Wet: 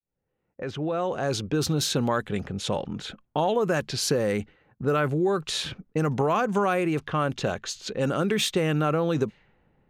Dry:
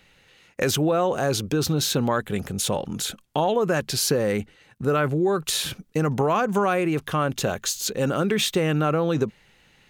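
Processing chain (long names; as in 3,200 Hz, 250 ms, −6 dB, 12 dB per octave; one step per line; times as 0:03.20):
fade in at the beginning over 1.52 s
low-pass that shuts in the quiet parts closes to 690 Hz, open at −18.5 dBFS
level −2 dB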